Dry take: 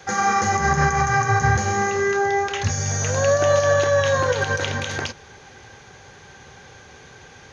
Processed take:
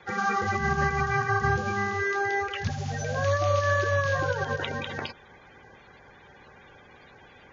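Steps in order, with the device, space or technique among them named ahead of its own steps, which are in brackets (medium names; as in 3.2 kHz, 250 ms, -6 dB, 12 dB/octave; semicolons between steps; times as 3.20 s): clip after many re-uploads (low-pass 5 kHz 24 dB/octave; coarse spectral quantiser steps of 30 dB); trim -6 dB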